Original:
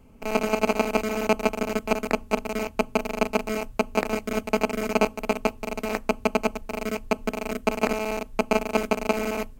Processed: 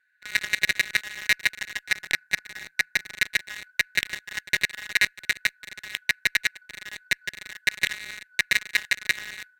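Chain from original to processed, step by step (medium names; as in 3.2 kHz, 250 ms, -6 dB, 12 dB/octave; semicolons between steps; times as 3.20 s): four frequency bands reordered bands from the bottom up 4123; 1.86–3.15 s: graphic EQ with 31 bands 160 Hz +10 dB, 315 Hz +8 dB, 800 Hz +12 dB, 3.15 kHz -7 dB; Chebyshev shaper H 7 -18 dB, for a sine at -5 dBFS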